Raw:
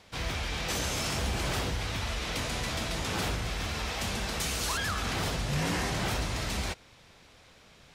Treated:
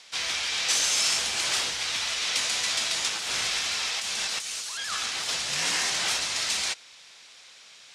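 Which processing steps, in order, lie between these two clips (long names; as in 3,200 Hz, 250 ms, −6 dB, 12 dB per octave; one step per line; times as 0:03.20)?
meter weighting curve ITU-R 468
0:03.08–0:05.29: compressor whose output falls as the input rises −31 dBFS, ratio −1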